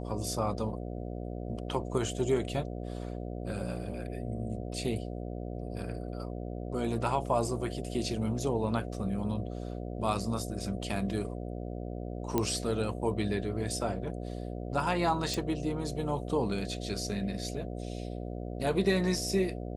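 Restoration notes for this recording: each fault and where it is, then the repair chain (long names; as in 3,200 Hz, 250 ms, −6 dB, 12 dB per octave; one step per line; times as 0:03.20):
mains buzz 60 Hz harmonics 12 −38 dBFS
0:12.38: click −14 dBFS
0:15.34: click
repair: click removal
hum removal 60 Hz, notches 12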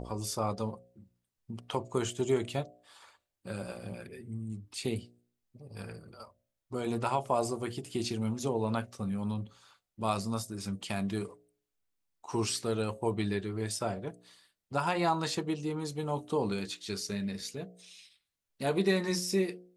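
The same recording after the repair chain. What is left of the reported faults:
0:12.38: click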